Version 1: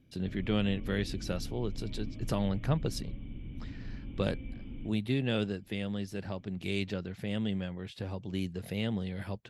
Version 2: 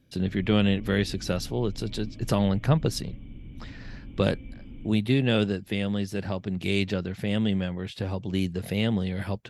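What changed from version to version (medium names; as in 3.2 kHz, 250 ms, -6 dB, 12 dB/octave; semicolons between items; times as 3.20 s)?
speech +7.5 dB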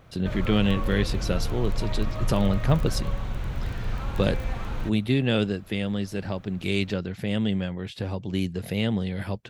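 background: remove cascade formant filter i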